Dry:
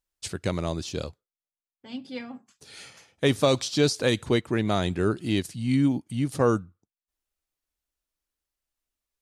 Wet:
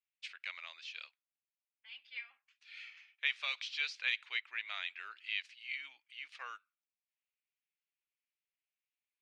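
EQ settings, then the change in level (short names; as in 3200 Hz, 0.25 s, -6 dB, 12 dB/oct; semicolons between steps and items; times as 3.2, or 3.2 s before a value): ladder high-pass 2100 Hz, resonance 55%; tape spacing loss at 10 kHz 43 dB; +13.0 dB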